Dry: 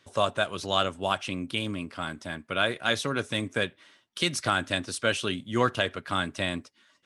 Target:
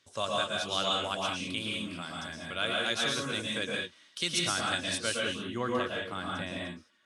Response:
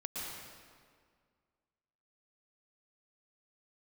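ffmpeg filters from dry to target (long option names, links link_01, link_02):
-filter_complex "[0:a]asetnsamples=nb_out_samples=441:pad=0,asendcmd='5.14 equalizer g -2.5',equalizer=frequency=6200:width=0.51:gain=9[link_01];[1:a]atrim=start_sample=2205,afade=type=out:start_time=0.27:duration=0.01,atrim=end_sample=12348[link_02];[link_01][link_02]afir=irnorm=-1:irlink=0,volume=-5.5dB"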